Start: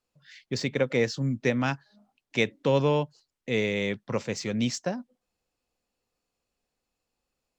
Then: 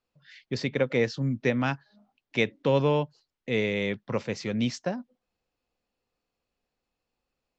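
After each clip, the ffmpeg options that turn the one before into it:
ffmpeg -i in.wav -af "lowpass=4700" out.wav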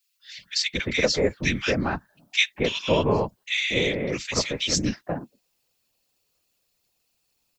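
ffmpeg -i in.wav -filter_complex "[0:a]crystalizer=i=7:c=0,afftfilt=real='hypot(re,im)*cos(2*PI*random(0))':imag='hypot(re,im)*sin(2*PI*random(1))':win_size=512:overlap=0.75,acrossover=split=1600[link_01][link_02];[link_01]adelay=230[link_03];[link_03][link_02]amix=inputs=2:normalize=0,volume=6.5dB" out.wav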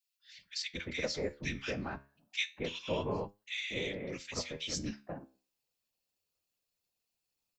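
ffmpeg -i in.wav -af "flanger=delay=9:depth=6.4:regen=76:speed=0.28:shape=triangular,volume=-9dB" out.wav

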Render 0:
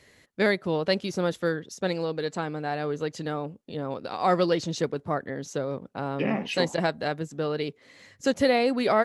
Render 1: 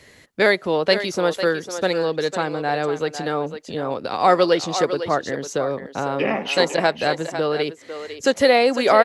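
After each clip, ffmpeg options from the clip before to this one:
ffmpeg -i in.wav -filter_complex "[0:a]acrossover=split=320[link_01][link_02];[link_01]acompressor=threshold=-41dB:ratio=6[link_03];[link_02]aecho=1:1:502:0.316[link_04];[link_03][link_04]amix=inputs=2:normalize=0,volume=8dB" out.wav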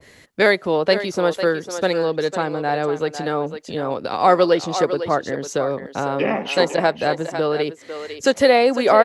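ffmpeg -i in.wav -af "adynamicequalizer=threshold=0.0251:dfrequency=1600:dqfactor=0.7:tfrequency=1600:tqfactor=0.7:attack=5:release=100:ratio=0.375:range=3:mode=cutabove:tftype=highshelf,volume=1.5dB" out.wav

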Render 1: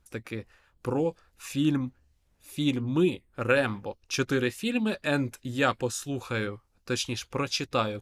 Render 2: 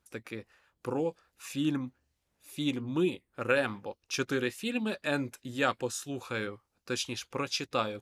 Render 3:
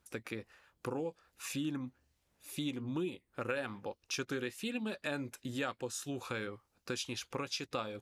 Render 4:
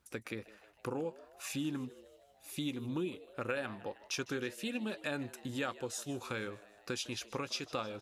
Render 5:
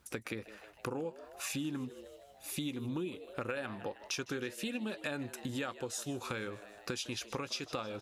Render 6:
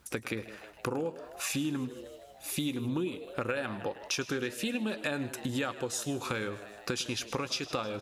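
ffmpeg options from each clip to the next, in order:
ffmpeg -i in.wav -af "highpass=frequency=190:poles=1,volume=-3dB" out.wav
ffmpeg -i in.wav -af "acompressor=threshold=-39dB:ratio=3,volume=2dB" out.wav
ffmpeg -i in.wav -filter_complex "[0:a]asplit=6[link_01][link_02][link_03][link_04][link_05][link_06];[link_02]adelay=156,afreqshift=100,volume=-19dB[link_07];[link_03]adelay=312,afreqshift=200,volume=-23.6dB[link_08];[link_04]adelay=468,afreqshift=300,volume=-28.2dB[link_09];[link_05]adelay=624,afreqshift=400,volume=-32.7dB[link_10];[link_06]adelay=780,afreqshift=500,volume=-37.3dB[link_11];[link_01][link_07][link_08][link_09][link_10][link_11]amix=inputs=6:normalize=0" out.wav
ffmpeg -i in.wav -af "acompressor=threshold=-45dB:ratio=2.5,volume=7dB" out.wav
ffmpeg -i in.wav -af "aecho=1:1:106|212|318:0.126|0.0504|0.0201,volume=5dB" out.wav

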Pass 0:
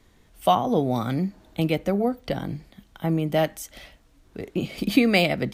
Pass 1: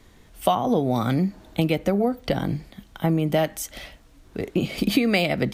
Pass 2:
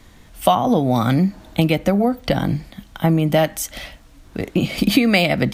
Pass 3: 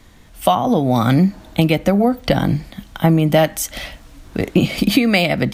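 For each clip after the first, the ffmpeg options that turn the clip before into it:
ffmpeg -i in.wav -af "acompressor=threshold=-23dB:ratio=4,volume=5.5dB" out.wav
ffmpeg -i in.wav -af "equalizer=frequency=410:width=3.4:gain=-6.5,volume=6dB" out.wav
ffmpeg -i in.wav -af "dynaudnorm=framelen=240:gausssize=3:maxgain=6.5dB" out.wav

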